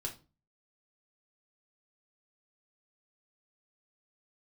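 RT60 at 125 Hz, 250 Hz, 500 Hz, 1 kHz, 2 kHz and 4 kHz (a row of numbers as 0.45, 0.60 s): 0.50, 0.45, 0.35, 0.30, 0.25, 0.25 s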